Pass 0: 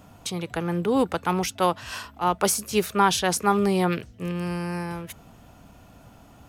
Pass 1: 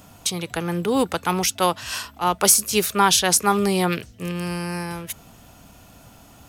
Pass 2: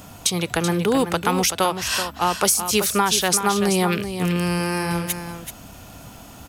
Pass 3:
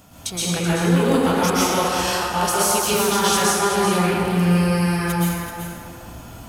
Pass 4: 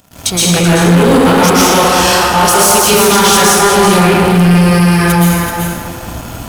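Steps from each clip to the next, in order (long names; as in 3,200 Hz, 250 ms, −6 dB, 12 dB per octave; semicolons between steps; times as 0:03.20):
high-shelf EQ 2,900 Hz +10 dB; level +1 dB
downward compressor 4 to 1, threshold −23 dBFS, peak gain reduction 11 dB; single-tap delay 381 ms −9 dB; level +6 dB
dense smooth reverb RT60 2.3 s, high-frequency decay 0.45×, pre-delay 105 ms, DRR −9.5 dB; level −8 dB
leveller curve on the samples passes 3; level +3 dB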